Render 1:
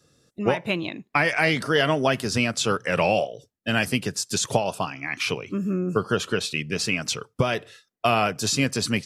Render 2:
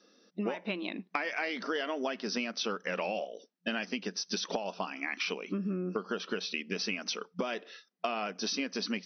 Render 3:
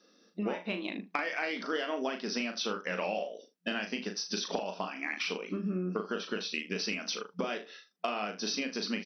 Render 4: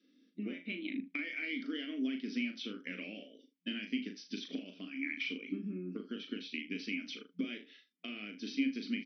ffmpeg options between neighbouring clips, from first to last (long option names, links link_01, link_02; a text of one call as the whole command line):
ffmpeg -i in.wav -af "afftfilt=real='re*between(b*sr/4096,180,6100)':imag='im*between(b*sr/4096,180,6100)':win_size=4096:overlap=0.75,acompressor=threshold=-31dB:ratio=6" out.wav
ffmpeg -i in.wav -filter_complex "[0:a]aeval=exprs='0.237*(cos(1*acos(clip(val(0)/0.237,-1,1)))-cos(1*PI/2))+0.00266*(cos(6*acos(clip(val(0)/0.237,-1,1)))-cos(6*PI/2))+0.00422*(cos(7*acos(clip(val(0)/0.237,-1,1)))-cos(7*PI/2))+0.0015*(cos(8*acos(clip(val(0)/0.237,-1,1)))-cos(8*PI/2))':channel_layout=same,asplit=2[link_01][link_02];[link_02]aecho=0:1:38|78:0.473|0.168[link_03];[link_01][link_03]amix=inputs=2:normalize=0" out.wav
ffmpeg -i in.wav -filter_complex "[0:a]asplit=3[link_01][link_02][link_03];[link_01]bandpass=frequency=270:width_type=q:width=8,volume=0dB[link_04];[link_02]bandpass=frequency=2290:width_type=q:width=8,volume=-6dB[link_05];[link_03]bandpass=frequency=3010:width_type=q:width=8,volume=-9dB[link_06];[link_04][link_05][link_06]amix=inputs=3:normalize=0,volume=6.5dB" out.wav